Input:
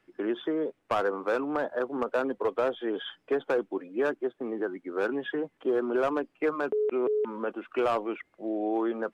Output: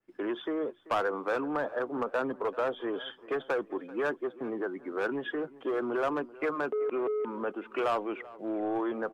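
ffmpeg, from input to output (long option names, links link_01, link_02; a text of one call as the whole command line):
ffmpeg -i in.wav -filter_complex "[0:a]agate=range=-12dB:threshold=-58dB:ratio=16:detection=peak,acrossover=split=820[link_01][link_02];[link_01]asoftclip=type=tanh:threshold=-27.5dB[link_03];[link_03][link_02]amix=inputs=2:normalize=0,asplit=2[link_04][link_05];[link_05]adelay=387,lowpass=frequency=2800:poles=1,volume=-19dB,asplit=2[link_06][link_07];[link_07]adelay=387,lowpass=frequency=2800:poles=1,volume=0.43,asplit=2[link_08][link_09];[link_09]adelay=387,lowpass=frequency=2800:poles=1,volume=0.43[link_10];[link_04][link_06][link_08][link_10]amix=inputs=4:normalize=0,adynamicequalizer=threshold=0.00501:dfrequency=2000:dqfactor=0.7:tfrequency=2000:tqfactor=0.7:attack=5:release=100:ratio=0.375:range=1.5:mode=cutabove:tftype=highshelf" out.wav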